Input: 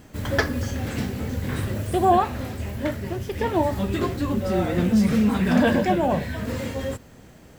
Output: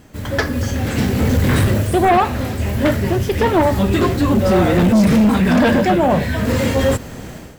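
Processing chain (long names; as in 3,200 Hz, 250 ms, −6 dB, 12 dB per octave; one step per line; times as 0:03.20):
automatic gain control gain up to 15.5 dB
in parallel at −8 dB: sine wavefolder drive 9 dB, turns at −0.5 dBFS
on the sum: level −6.5 dB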